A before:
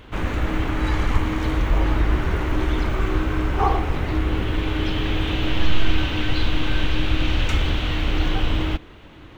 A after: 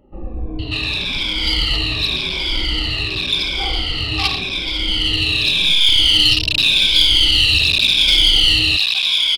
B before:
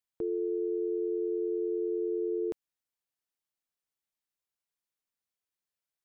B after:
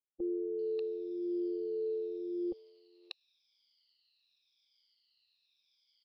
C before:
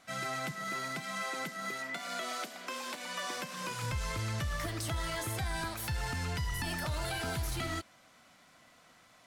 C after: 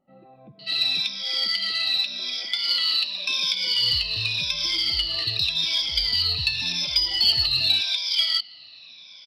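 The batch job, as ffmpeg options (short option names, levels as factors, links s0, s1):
-filter_complex "[0:a]afftfilt=real='re*pow(10,20/40*sin(2*PI*(1.7*log(max(b,1)*sr/1024/100)/log(2)-(-0.88)*(pts-256)/sr)))':imag='im*pow(10,20/40*sin(2*PI*(1.7*log(max(b,1)*sr/1024/100)/log(2)-(-0.88)*(pts-256)/sr)))':win_size=1024:overlap=0.75,aresample=11025,volume=2.82,asoftclip=hard,volume=0.355,aresample=44100,acrossover=split=790[s0][s1];[s1]adelay=590[s2];[s0][s2]amix=inputs=2:normalize=0,aexciter=amount=10.5:drive=9.8:freq=2600,volume=0.422"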